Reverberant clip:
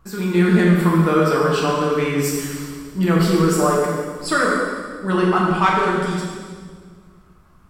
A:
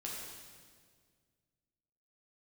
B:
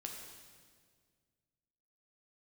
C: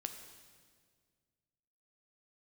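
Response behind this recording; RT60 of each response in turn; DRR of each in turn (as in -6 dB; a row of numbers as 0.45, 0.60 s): A; 1.8, 1.8, 1.8 s; -4.5, 0.5, 6.0 dB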